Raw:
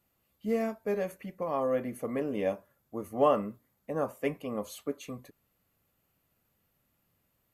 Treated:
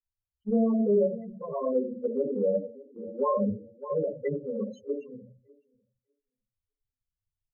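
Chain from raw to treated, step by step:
0:01.73–0:02.37: high-pass filter 140 Hz 12 dB per octave
rectangular room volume 32 cubic metres, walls mixed, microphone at 0.92 metres
dynamic equaliser 250 Hz, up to +5 dB, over −37 dBFS, Q 1.9
repeating echo 600 ms, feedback 30%, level −13.5 dB
0:00.63–0:01.03: transient designer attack 0 dB, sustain +12 dB
mains-hum notches 60/120/180/240 Hz
comb filter 2 ms, depth 39%
brickwall limiter −16 dBFS, peak gain reduction 9.5 dB
spectral peaks only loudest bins 8
low-pass filter 2,900 Hz 12 dB per octave
multiband upward and downward expander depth 100%
level −2 dB

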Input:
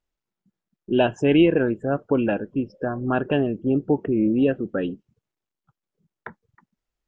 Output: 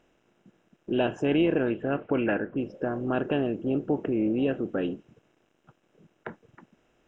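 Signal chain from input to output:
compressor on every frequency bin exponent 0.6
0:01.65–0:02.56: low-pass with resonance 3,500 Hz → 1,600 Hz, resonance Q 2.8
level −8.5 dB

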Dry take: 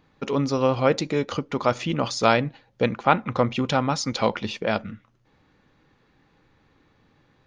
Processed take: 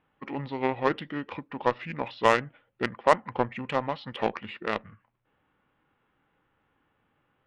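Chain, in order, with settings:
low-pass filter 3,800 Hz 24 dB per octave
low-shelf EQ 480 Hz −9.5 dB
harmonic generator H 7 −22 dB, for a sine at −4.5 dBFS
formants moved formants −4 semitones
level +1.5 dB

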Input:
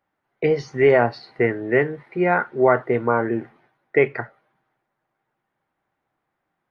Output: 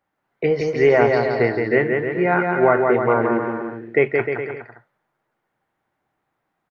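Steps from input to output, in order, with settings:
bouncing-ball delay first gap 170 ms, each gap 0.8×, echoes 5

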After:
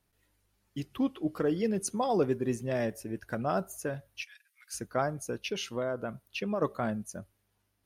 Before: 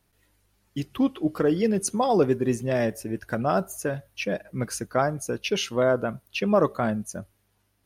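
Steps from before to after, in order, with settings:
0:04.22–0:04.74: Bessel high-pass filter 2,800 Hz, order 6
0:05.38–0:06.62: downward compressor 3 to 1, threshold −24 dBFS, peak gain reduction 7 dB
level −6.5 dB

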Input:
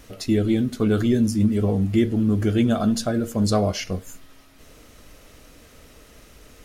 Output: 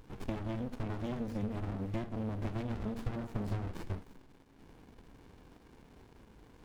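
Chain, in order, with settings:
bass and treble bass −11 dB, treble −10 dB
downward compressor 10 to 1, threshold −30 dBFS, peak gain reduction 13 dB
windowed peak hold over 65 samples

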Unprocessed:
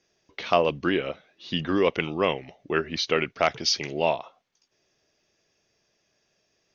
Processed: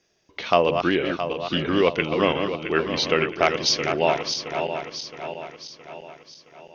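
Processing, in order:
feedback delay that plays each chunk backwards 334 ms, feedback 69%, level −6.5 dB
level +2.5 dB

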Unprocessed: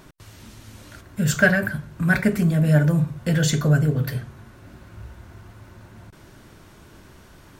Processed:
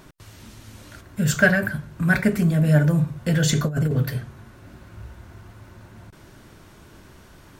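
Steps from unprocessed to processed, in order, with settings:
0:03.49–0:04.03: compressor whose output falls as the input rises −20 dBFS, ratio −0.5

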